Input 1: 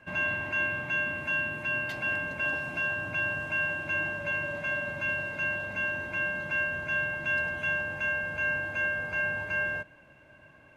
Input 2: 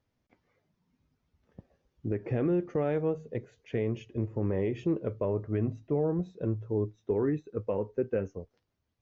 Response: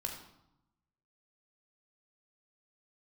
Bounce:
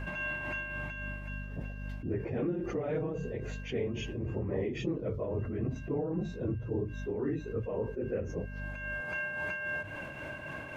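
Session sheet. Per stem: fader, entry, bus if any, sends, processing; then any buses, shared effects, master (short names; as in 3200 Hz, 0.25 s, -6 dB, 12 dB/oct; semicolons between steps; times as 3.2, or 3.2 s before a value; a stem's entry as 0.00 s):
-9.5 dB, 0.00 s, muted 4.51–5.3, no send, notches 50/100 Hz; limiter -29 dBFS, peak gain reduction 9.5 dB; auto duck -24 dB, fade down 1.20 s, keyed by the second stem
-5.5 dB, 0.00 s, no send, phase scrambler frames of 50 ms; hum 50 Hz, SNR 21 dB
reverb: off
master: tremolo 3.7 Hz, depth 78%; fast leveller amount 70%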